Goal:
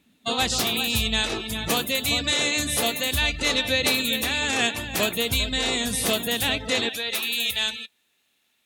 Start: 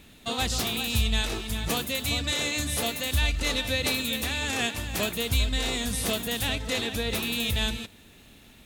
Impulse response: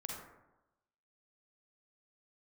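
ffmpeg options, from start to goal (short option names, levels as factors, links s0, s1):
-af "asetnsamples=n=441:p=0,asendcmd='6.89 highpass f 1300',highpass=f=200:p=1,afftdn=nr=18:nf=-43,volume=1.88"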